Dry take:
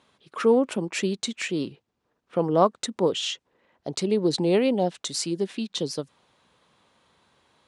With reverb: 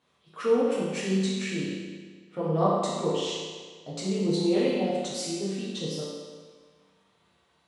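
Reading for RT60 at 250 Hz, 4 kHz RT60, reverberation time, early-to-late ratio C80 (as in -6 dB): 1.6 s, 1.4 s, 1.6 s, 1.0 dB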